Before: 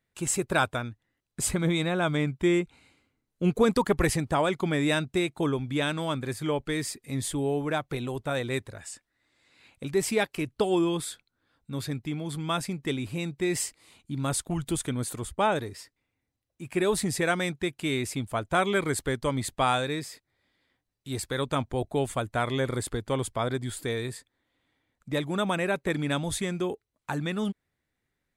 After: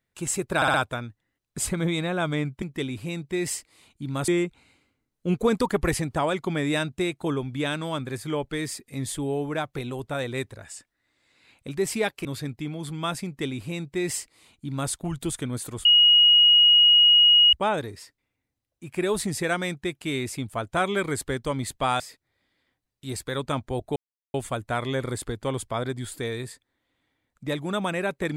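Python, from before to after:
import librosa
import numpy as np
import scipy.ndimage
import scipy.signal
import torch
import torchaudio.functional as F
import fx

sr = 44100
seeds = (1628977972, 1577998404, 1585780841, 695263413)

y = fx.edit(x, sr, fx.stutter(start_s=0.56, slice_s=0.06, count=4),
    fx.cut(start_s=10.41, length_s=1.3),
    fx.duplicate(start_s=12.71, length_s=1.66, to_s=2.44),
    fx.insert_tone(at_s=15.31, length_s=1.68, hz=2890.0, db=-12.5),
    fx.cut(start_s=19.78, length_s=0.25),
    fx.insert_silence(at_s=21.99, length_s=0.38), tone=tone)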